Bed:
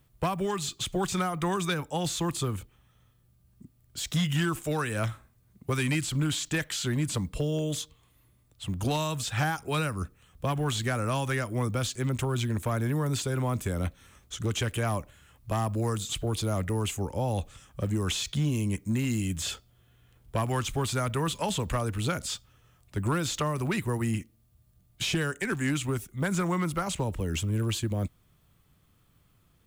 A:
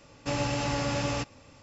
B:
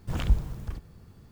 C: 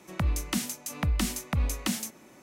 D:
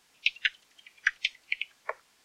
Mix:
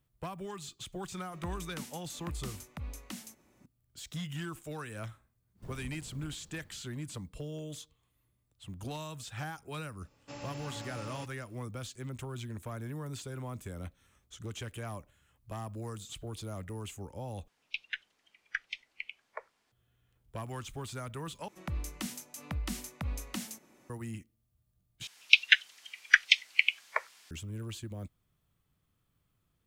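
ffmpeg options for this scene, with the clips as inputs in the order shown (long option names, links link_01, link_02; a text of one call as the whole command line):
ffmpeg -i bed.wav -i cue0.wav -i cue1.wav -i cue2.wav -i cue3.wav -filter_complex "[3:a]asplit=2[link_01][link_02];[4:a]asplit=2[link_03][link_04];[0:a]volume=-12dB[link_05];[2:a]acrossover=split=180|740[link_06][link_07][link_08];[link_06]acompressor=threshold=-40dB:ratio=4[link_09];[link_07]acompressor=threshold=-44dB:ratio=4[link_10];[link_08]acompressor=threshold=-58dB:ratio=4[link_11];[link_09][link_10][link_11]amix=inputs=3:normalize=0[link_12];[1:a]highpass=120[link_13];[link_03]highshelf=frequency=2400:gain=-8.5[link_14];[link_04]tiltshelf=frequency=690:gain=-8[link_15];[link_05]asplit=4[link_16][link_17][link_18][link_19];[link_16]atrim=end=17.484[link_20];[link_14]atrim=end=2.24,asetpts=PTS-STARTPTS,volume=-6.5dB[link_21];[link_17]atrim=start=19.716:end=21.484[link_22];[link_02]atrim=end=2.42,asetpts=PTS-STARTPTS,volume=-9dB[link_23];[link_18]atrim=start=23.896:end=25.074[link_24];[link_15]atrim=end=2.24,asetpts=PTS-STARTPTS,volume=-0.5dB[link_25];[link_19]atrim=start=27.306[link_26];[link_01]atrim=end=2.42,asetpts=PTS-STARTPTS,volume=-14dB,afade=type=in:duration=0.004:curve=hsin,afade=type=out:start_time=2.416:duration=0.004:curve=hsin,adelay=1240[link_27];[link_12]atrim=end=1.31,asetpts=PTS-STARTPTS,volume=-8dB,afade=type=in:duration=0.1,afade=type=out:start_time=1.21:duration=0.1,adelay=5550[link_28];[link_13]atrim=end=1.62,asetpts=PTS-STARTPTS,volume=-15dB,afade=type=in:duration=0.004:curve=hsin,afade=type=out:start_time=1.616:duration=0.004:curve=hsin,adelay=441882S[link_29];[link_20][link_21]acrossfade=duration=0.004:curve1=hsin:curve2=hsin[link_30];[link_30][link_22]acrossfade=duration=0.004:curve1=hsin:curve2=hsin[link_31];[link_31][link_23]acrossfade=duration=0.004:curve1=hsin:curve2=hsin[link_32];[link_32][link_24]acrossfade=duration=0.004:curve1=hsin:curve2=hsin[link_33];[link_33][link_25]acrossfade=duration=0.004:curve1=hsin:curve2=hsin[link_34];[link_34][link_26]acrossfade=duration=0.004:curve1=hsin:curve2=hsin[link_35];[link_35][link_27][link_28][link_29]amix=inputs=4:normalize=0" out.wav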